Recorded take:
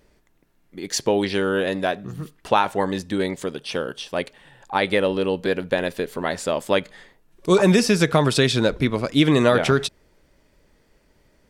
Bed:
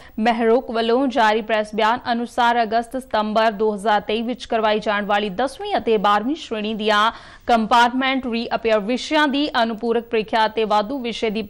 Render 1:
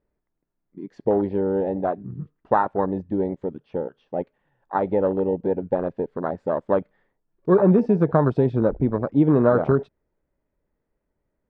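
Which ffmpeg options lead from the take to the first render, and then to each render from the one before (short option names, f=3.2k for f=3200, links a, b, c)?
-af "lowpass=1.4k,afwtdn=0.0631"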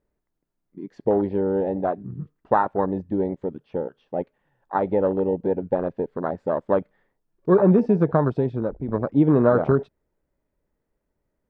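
-filter_complex "[0:a]asplit=2[a][b];[a]atrim=end=8.88,asetpts=PTS-STARTPTS,afade=t=out:st=7.99:d=0.89:silence=0.334965[c];[b]atrim=start=8.88,asetpts=PTS-STARTPTS,afade=t=in:d=0.004:c=hsin:silence=0.334965[d];[c][d]concat=n=2:v=0:a=1"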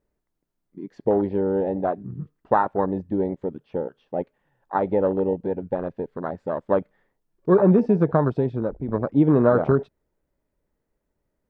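-filter_complex "[0:a]asettb=1/sr,asplit=3[a][b][c];[a]atrim=end=5.334[d];[b]atrim=start=5.33:end=6.71,asetpts=PTS-STARTPTS,afade=t=in:d=0.004:c=qsin,afade=t=out:st=1.376:d=0.004:c=qsin,equalizer=f=470:w=0.42:g=-3.5[e];[c]atrim=start=6.706[f];[d][e]acrossfade=d=0.004:c1=hsin:c2=qsin[g];[g][f]acrossfade=d=0.004:c1=qsin:c2=hsin"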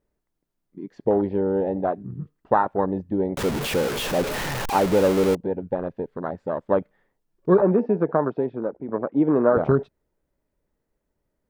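-filter_complex "[0:a]asettb=1/sr,asplit=3[a][b][c];[a]atrim=end=3.374[d];[b]atrim=start=3.37:end=5.35,asetpts=PTS-STARTPTS,afade=t=in:d=0.004:c=qsin,afade=t=out:st=1.976:d=0.004:c=qsin,aeval=exprs='val(0)+0.5*0.0841*sgn(val(0))':c=same[e];[c]atrim=start=5.346[f];[d][e]acrossfade=d=0.004:c1=hsin:c2=qsin[g];[g][f]acrossfade=d=0.004:c1=qsin:c2=hsin,asettb=1/sr,asplit=3[h][i][j];[h]atrim=end=7.614[k];[i]atrim=start=7.61:end=9.57,asetpts=PTS-STARTPTS,afade=t=in:d=0.004:c=qsin,afade=t=out:st=1.956:d=0.004:c=qsin,highpass=250,lowpass=2.3k[l];[j]atrim=start=9.566[m];[k][l]acrossfade=d=0.004:c1=hsin:c2=qsin[n];[n][m]acrossfade=d=0.004:c1=qsin:c2=hsin"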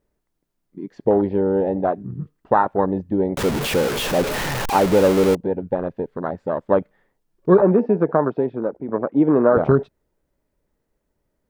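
-af "volume=3.5dB,alimiter=limit=-3dB:level=0:latency=1"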